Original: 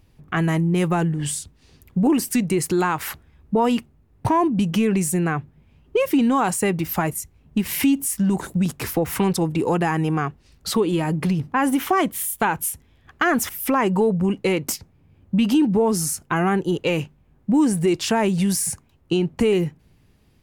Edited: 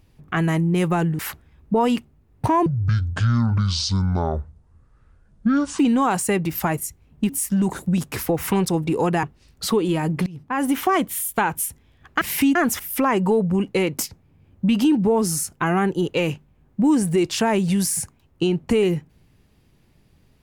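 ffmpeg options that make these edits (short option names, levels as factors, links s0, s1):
-filter_complex "[0:a]asplit=9[s0][s1][s2][s3][s4][s5][s6][s7][s8];[s0]atrim=end=1.192[s9];[s1]atrim=start=2.998:end=4.474[s10];[s2]atrim=start=4.47:end=6.13,asetpts=PTS-STARTPTS,asetrate=23373,aresample=44100[s11];[s3]atrim=start=6.126:end=7.632[s12];[s4]atrim=start=7.968:end=9.912[s13];[s5]atrim=start=10.268:end=11.3,asetpts=PTS-STARTPTS,afade=t=out:st=1.028:d=0.004:c=hsin:silence=0.0707946[s14];[s6]atrim=start=11.3:end=13.252,asetpts=PTS-STARTPTS,afade=t=in:d=0.47:silence=0.0707946[s15];[s7]atrim=start=7.628:end=7.972[s16];[s8]atrim=start=13.248[s17];[s9][s10]acrossfade=d=0.004:c1=hsin:c2=hsin[s18];[s18][s11]acrossfade=d=0.004:c1=hsin:c2=hsin[s19];[s19][s12]acrossfade=d=0.004:c1=hsin:c2=hsin[s20];[s20][s13]acrossfade=d=0.004:c1=hsin:c2=hsin[s21];[s14][s15]concat=n=2:v=0:a=1[s22];[s21][s22]acrossfade=d=0.004:c1=hsin:c2=hsin[s23];[s23][s16]acrossfade=d=0.004:c1=hsin:c2=hsin[s24];[s24][s17]acrossfade=d=0.004:c1=hsin:c2=hsin"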